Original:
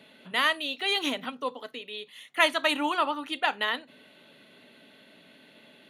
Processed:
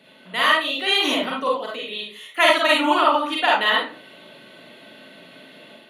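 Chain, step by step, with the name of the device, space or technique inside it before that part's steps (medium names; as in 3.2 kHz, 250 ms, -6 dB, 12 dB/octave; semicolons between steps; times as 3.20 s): far laptop microphone (reverberation RT60 0.40 s, pre-delay 37 ms, DRR -4 dB; high-pass 130 Hz; level rider gain up to 5 dB)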